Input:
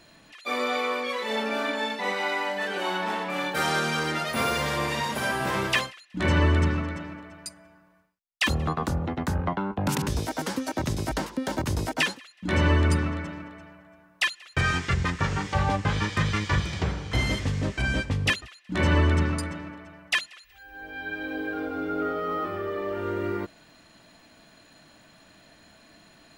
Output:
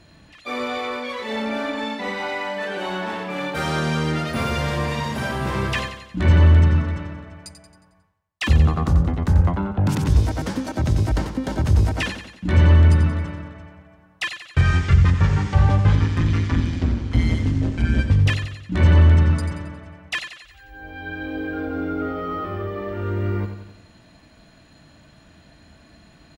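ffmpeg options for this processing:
-filter_complex "[0:a]asoftclip=type=tanh:threshold=-16dB,equalizer=f=63:w=0.42:g=14.5,asettb=1/sr,asplit=3[a][b][c];[a]atrim=end=15.954[d];[b]atrim=start=15.95:end=17.99,asetpts=PTS-STARTPTS,afade=t=in:d=0.004:c=qsin,afade=t=out:st=2.036:d=0.004:c=qsin,tremolo=f=170:d=0.824[e];[c]atrim=start=17.986[f];[d][e]acrossfade=d=0.004:c1=hsin:c2=qsin[g];[g][f]acrossfade=d=0.004:c1=qsin:c2=hsin,highshelf=f=11k:g=-9.5,aecho=1:1:90|180|270|360|450|540:0.355|0.181|0.0923|0.0471|0.024|0.0122"

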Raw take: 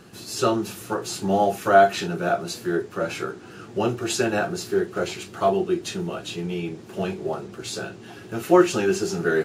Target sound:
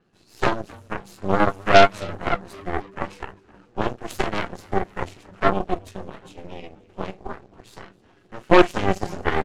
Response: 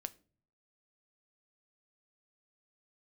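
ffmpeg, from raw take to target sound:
-filter_complex "[0:a]lowpass=11k,aemphasis=mode=reproduction:type=50kf,aeval=exprs='0.631*(cos(1*acos(clip(val(0)/0.631,-1,1)))-cos(1*PI/2))+0.178*(cos(6*acos(clip(val(0)/0.631,-1,1)))-cos(6*PI/2))+0.0794*(cos(7*acos(clip(val(0)/0.631,-1,1)))-cos(7*PI/2))+0.0282*(cos(8*acos(clip(val(0)/0.631,-1,1)))-cos(8*PI/2))':c=same,asplit=6[a][b][c][d][e][f];[b]adelay=262,afreqshift=-98,volume=-23dB[g];[c]adelay=524,afreqshift=-196,volume=-27dB[h];[d]adelay=786,afreqshift=-294,volume=-31dB[i];[e]adelay=1048,afreqshift=-392,volume=-35dB[j];[f]adelay=1310,afreqshift=-490,volume=-39.1dB[k];[a][g][h][i][j][k]amix=inputs=6:normalize=0,adynamicequalizer=threshold=0.00501:dfrequency=6700:dqfactor=0.7:tfrequency=6700:tqfactor=0.7:attack=5:release=100:ratio=0.375:range=2.5:mode=boostabove:tftype=highshelf,volume=1dB"

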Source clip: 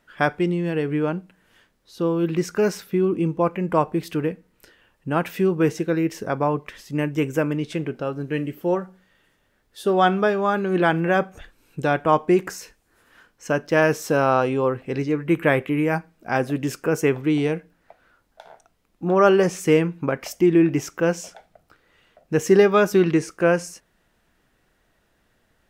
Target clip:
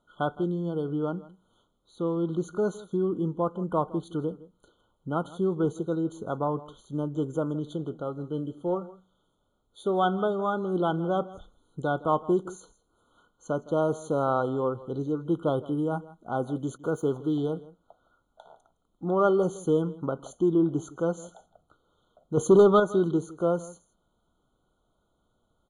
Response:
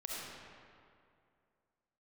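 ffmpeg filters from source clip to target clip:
-filter_complex "[0:a]aresample=22050,aresample=44100,asettb=1/sr,asplit=3[a][b][c];[a]atrim=end=22.374[d];[b]atrim=start=22.37:end=22.8,asetpts=PTS-STARTPTS,afade=t=in:d=0.004:c=qsin,afade=t=out:st=0.426:d=0.004:c=qsin,acontrast=85[e];[c]atrim=start=22.796[f];[d][e]acrossfade=d=0.004:c1=hsin:c2=qsin[g];[g][f]acrossfade=d=0.004:c1=qsin:c2=hsin,asplit=2[h][i];[i]asoftclip=type=tanh:threshold=-15.5dB,volume=-11.5dB[j];[h][j]amix=inputs=2:normalize=0,equalizer=f=5.2k:t=o:w=0.44:g=-12,asplit=3[k][l][m];[k]afade=t=out:st=16.76:d=0.02[n];[l]aeval=exprs='sgn(val(0))*max(abs(val(0))-0.00596,0)':c=same,afade=t=in:st=16.76:d=0.02,afade=t=out:st=17.37:d=0.02[o];[m]afade=t=in:st=17.37:d=0.02[p];[n][o][p]amix=inputs=3:normalize=0,aecho=1:1:162:0.112,afftfilt=real='re*eq(mod(floor(b*sr/1024/1500),2),0)':imag='im*eq(mod(floor(b*sr/1024/1500),2),0)':win_size=1024:overlap=0.75,volume=-8dB"

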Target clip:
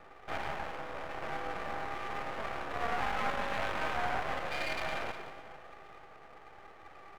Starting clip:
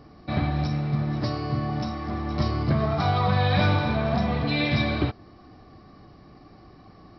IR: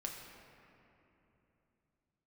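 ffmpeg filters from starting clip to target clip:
-filter_complex "[0:a]asplit=2[a][b];[b]adelay=174.9,volume=-16dB,highshelf=f=4k:g=-3.94[c];[a][c]amix=inputs=2:normalize=0,asoftclip=type=tanh:threshold=-29.5dB,highpass=f=460:t=q:w=0.5412,highpass=f=460:t=q:w=1.307,lowpass=f=2.3k:t=q:w=0.5176,lowpass=f=2.3k:t=q:w=0.7071,lowpass=f=2.3k:t=q:w=1.932,afreqshift=59,asplit=2[d][e];[1:a]atrim=start_sample=2205,adelay=50[f];[e][f]afir=irnorm=-1:irlink=0,volume=-5.5dB[g];[d][g]amix=inputs=2:normalize=0,aeval=exprs='max(val(0),0)':c=same,volume=5.5dB"

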